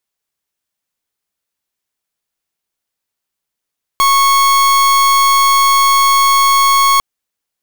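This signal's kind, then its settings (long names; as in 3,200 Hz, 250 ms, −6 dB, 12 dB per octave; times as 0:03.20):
pulse wave 1,100 Hz, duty 42% −10 dBFS 3.00 s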